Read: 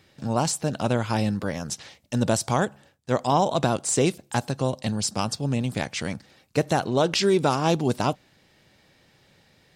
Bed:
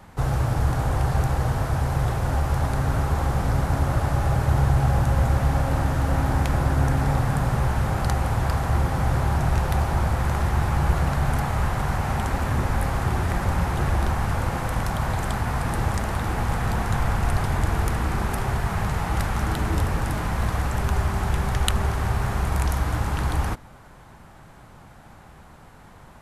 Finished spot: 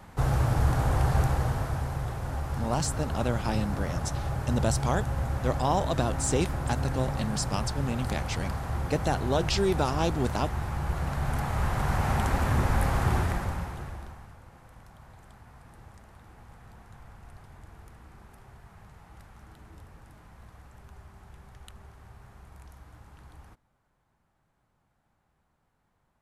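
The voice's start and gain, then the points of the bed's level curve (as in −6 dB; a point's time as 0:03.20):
2.35 s, −5.5 dB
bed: 0:01.21 −2 dB
0:02.04 −9.5 dB
0:10.85 −9.5 dB
0:12.05 −1.5 dB
0:13.17 −1.5 dB
0:14.38 −26.5 dB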